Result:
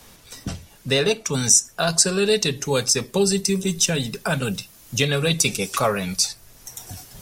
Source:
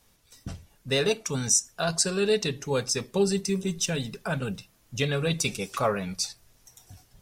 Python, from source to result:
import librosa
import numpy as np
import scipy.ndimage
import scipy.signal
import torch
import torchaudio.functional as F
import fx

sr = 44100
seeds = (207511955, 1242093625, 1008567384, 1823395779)

y = fx.high_shelf(x, sr, hz=4900.0, db=fx.steps((0.0, -2.0), (1.33, 8.0)))
y = fx.band_squash(y, sr, depth_pct=40)
y = F.gain(torch.from_numpy(y), 5.0).numpy()